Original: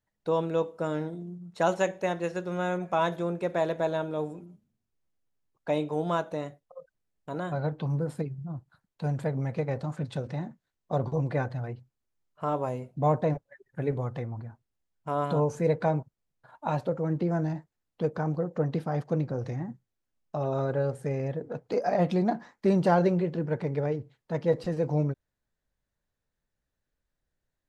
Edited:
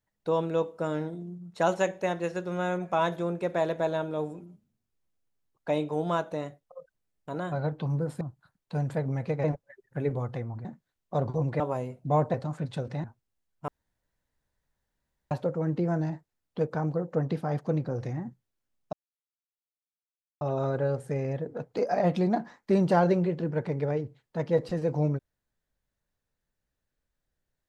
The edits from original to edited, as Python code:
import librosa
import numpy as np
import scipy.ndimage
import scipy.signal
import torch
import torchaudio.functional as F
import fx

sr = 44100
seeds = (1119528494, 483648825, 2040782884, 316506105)

y = fx.edit(x, sr, fx.cut(start_s=8.21, length_s=0.29),
    fx.swap(start_s=9.73, length_s=0.7, other_s=13.26, other_length_s=1.21),
    fx.cut(start_s=11.38, length_s=1.14),
    fx.room_tone_fill(start_s=15.11, length_s=1.63),
    fx.insert_silence(at_s=20.36, length_s=1.48), tone=tone)